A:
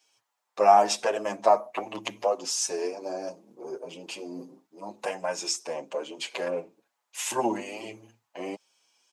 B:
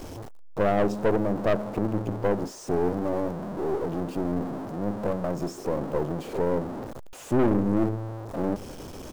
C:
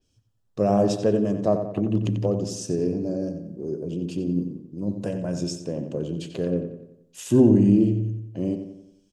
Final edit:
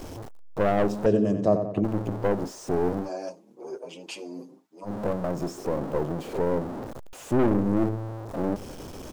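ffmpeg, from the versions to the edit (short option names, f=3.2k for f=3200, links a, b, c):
-filter_complex "[1:a]asplit=3[a][b][c];[a]atrim=end=1.062[d];[2:a]atrim=start=1.058:end=1.842[e];[b]atrim=start=1.838:end=3.1[f];[0:a]atrim=start=3:end=4.93[g];[c]atrim=start=4.83[h];[d][e]acrossfade=d=0.004:c1=hsin:c2=hsin[i];[i][f]acrossfade=d=0.004:c1=hsin:c2=hsin[j];[j][g]acrossfade=d=0.1:c1=tri:c2=tri[k];[k][h]acrossfade=d=0.1:c1=tri:c2=tri"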